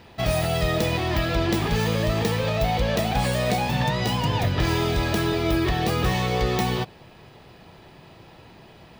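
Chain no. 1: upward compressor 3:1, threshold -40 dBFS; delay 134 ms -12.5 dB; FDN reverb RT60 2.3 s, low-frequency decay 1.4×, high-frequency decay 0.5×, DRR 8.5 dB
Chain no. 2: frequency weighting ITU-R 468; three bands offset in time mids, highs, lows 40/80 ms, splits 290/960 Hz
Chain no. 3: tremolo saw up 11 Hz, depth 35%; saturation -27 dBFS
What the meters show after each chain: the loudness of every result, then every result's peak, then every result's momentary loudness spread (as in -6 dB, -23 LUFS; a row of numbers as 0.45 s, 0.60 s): -22.0 LUFS, -21.5 LUFS, -30.5 LUFS; -8.0 dBFS, -1.0 dBFS, -27.0 dBFS; 4 LU, 2 LU, 20 LU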